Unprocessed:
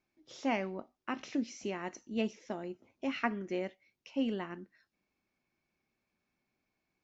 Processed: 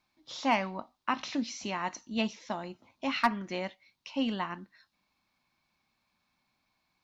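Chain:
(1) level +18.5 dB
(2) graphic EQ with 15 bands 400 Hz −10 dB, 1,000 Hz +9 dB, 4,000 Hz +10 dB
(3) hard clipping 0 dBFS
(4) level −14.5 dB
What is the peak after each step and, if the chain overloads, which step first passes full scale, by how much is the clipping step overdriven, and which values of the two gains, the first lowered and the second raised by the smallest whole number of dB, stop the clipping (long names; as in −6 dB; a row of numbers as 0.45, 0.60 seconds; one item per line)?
+2.5, +5.0, 0.0, −14.5 dBFS
step 1, 5.0 dB
step 1 +13.5 dB, step 4 −9.5 dB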